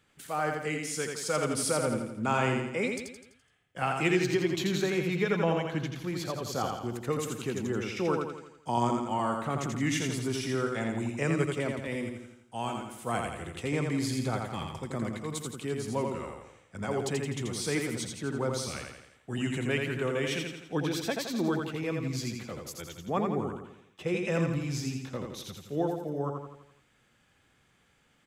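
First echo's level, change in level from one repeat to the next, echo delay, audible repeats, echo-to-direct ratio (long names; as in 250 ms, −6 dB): −4.0 dB, −6.0 dB, 84 ms, 6, −3.0 dB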